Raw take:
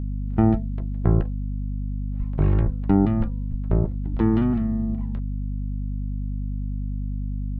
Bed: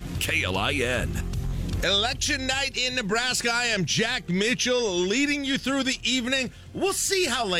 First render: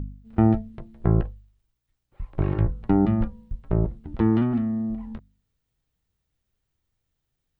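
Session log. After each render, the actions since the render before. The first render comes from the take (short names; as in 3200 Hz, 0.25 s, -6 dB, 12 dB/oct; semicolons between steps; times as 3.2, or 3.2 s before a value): de-hum 50 Hz, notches 5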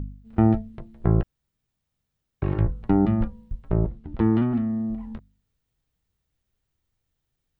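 1.23–2.42 room tone; 3.89–4.7 air absorption 60 m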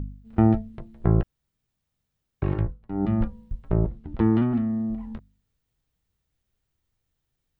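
2.52–3.17 dip -16.5 dB, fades 0.27 s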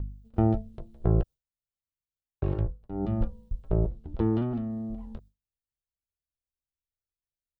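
graphic EQ 125/250/500/1000/2000 Hz -3/-8/+3/-5/-11 dB; gate with hold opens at -43 dBFS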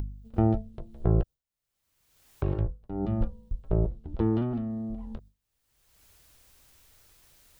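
upward compressor, threshold -32 dBFS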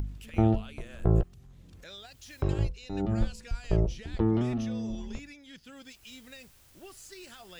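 add bed -24 dB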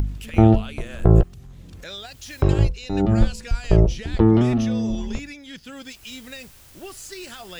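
gain +10.5 dB; limiter -3 dBFS, peak gain reduction 1.5 dB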